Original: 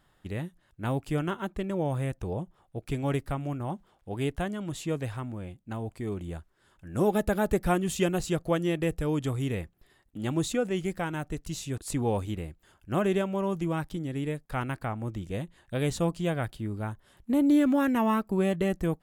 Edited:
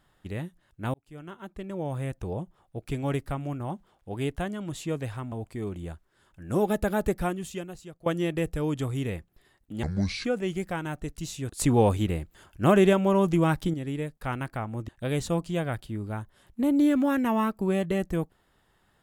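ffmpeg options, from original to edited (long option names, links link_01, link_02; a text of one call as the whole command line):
ffmpeg -i in.wav -filter_complex "[0:a]asplit=9[link_01][link_02][link_03][link_04][link_05][link_06][link_07][link_08][link_09];[link_01]atrim=end=0.94,asetpts=PTS-STARTPTS,afade=type=out:start_time=0.936:duration=0.004:curve=hsin[link_10];[link_02]atrim=start=0.94:end=5.322,asetpts=PTS-STARTPTS,afade=type=in:duration=1.3[link_11];[link_03]atrim=start=5.768:end=8.51,asetpts=PTS-STARTPTS,afade=type=out:start_time=1.752:duration=0.99:curve=qua:silence=0.133352[link_12];[link_04]atrim=start=8.51:end=10.284,asetpts=PTS-STARTPTS,afade=type=in:duration=0.004:curve=hsin:silence=0.133352[link_13];[link_05]atrim=start=10.28:end=10.53,asetpts=PTS-STARTPTS,asetrate=26460,aresample=44100[link_14];[link_06]atrim=start=10.526:end=11.882[link_15];[link_07]atrim=start=11.878:end=14.022,asetpts=PTS-STARTPTS,volume=7dB[link_16];[link_08]atrim=start=14.018:end=15.172[link_17];[link_09]atrim=start=15.588[link_18];[link_10][link_11]concat=n=2:v=0:a=1[link_19];[link_12][link_13]concat=n=2:v=0:a=1[link_20];[link_19][link_20]acrossfade=duration=0.004:curve1=hsin:curve2=hsin[link_21];[link_21][link_14]acrossfade=duration=0.004:curve1=hsin:curve2=hsin[link_22];[link_22][link_15]acrossfade=duration=0.004:curve1=hsin:curve2=hsin[link_23];[link_23][link_16]acrossfade=duration=0.004:curve1=hsin:curve2=hsin[link_24];[link_24][link_17]acrossfade=duration=0.004:curve1=hsin:curve2=hsin[link_25];[link_25][link_18]acrossfade=duration=0.004:curve1=hsin:curve2=hsin" out.wav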